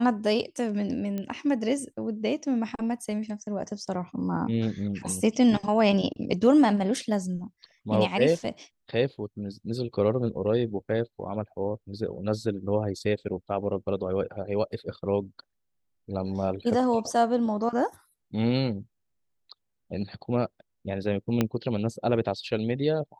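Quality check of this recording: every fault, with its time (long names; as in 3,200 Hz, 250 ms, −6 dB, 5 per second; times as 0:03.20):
0:01.18: click −20 dBFS
0:21.41: click −10 dBFS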